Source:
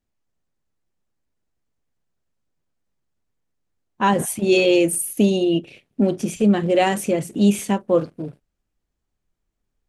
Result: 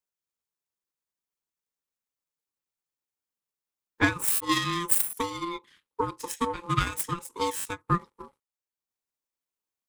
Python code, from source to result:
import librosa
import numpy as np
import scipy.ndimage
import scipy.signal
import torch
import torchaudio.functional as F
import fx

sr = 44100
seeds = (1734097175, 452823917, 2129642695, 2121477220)

y = fx.tracing_dist(x, sr, depth_ms=0.081)
y = scipy.signal.sosfilt(scipy.signal.butter(2, 62.0, 'highpass', fs=sr, output='sos'), y)
y = fx.riaa(y, sr, side='recording')
y = y * np.sin(2.0 * np.pi * 690.0 * np.arange(len(y)) / sr)
y = fx.high_shelf(y, sr, hz=4500.0, db=-5.0)
y = fx.transient(y, sr, attack_db=11, sustain_db=-5)
y = fx.buffer_glitch(y, sr, at_s=(4.31, 7.56), block=512, repeats=7)
y = fx.end_taper(y, sr, db_per_s=470.0)
y = y * librosa.db_to_amplitude(-8.5)